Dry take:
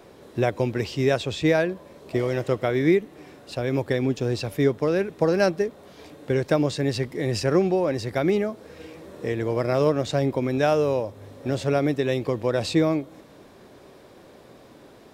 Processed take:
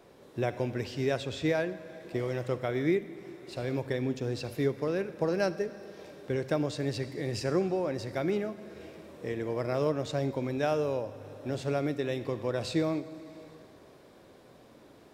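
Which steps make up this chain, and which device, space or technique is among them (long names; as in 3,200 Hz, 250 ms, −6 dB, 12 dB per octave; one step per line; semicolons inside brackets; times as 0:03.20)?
compressed reverb return (on a send at −4 dB: convolution reverb RT60 1.8 s, pre-delay 37 ms + downward compressor 5 to 1, threshold −30 dBFS, peak gain reduction 12.5 dB)
on the sum: level −8 dB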